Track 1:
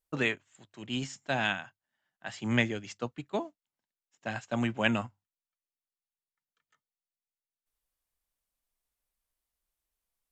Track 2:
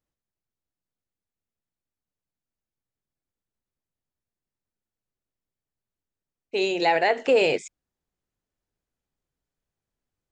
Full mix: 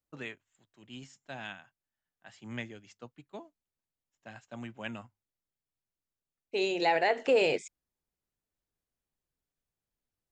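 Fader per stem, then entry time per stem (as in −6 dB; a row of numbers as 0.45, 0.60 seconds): −12.5, −5.5 decibels; 0.00, 0.00 seconds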